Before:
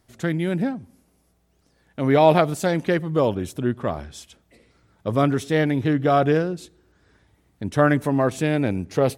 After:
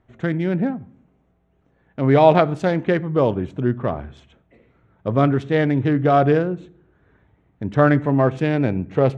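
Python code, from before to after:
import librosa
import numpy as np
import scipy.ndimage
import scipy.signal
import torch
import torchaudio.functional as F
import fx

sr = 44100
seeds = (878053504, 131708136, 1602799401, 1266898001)

y = fx.wiener(x, sr, points=9)
y = fx.air_absorb(y, sr, metres=120.0)
y = fx.rev_fdn(y, sr, rt60_s=0.53, lf_ratio=1.5, hf_ratio=0.7, size_ms=45.0, drr_db=16.0)
y = F.gain(torch.from_numpy(y), 2.5).numpy()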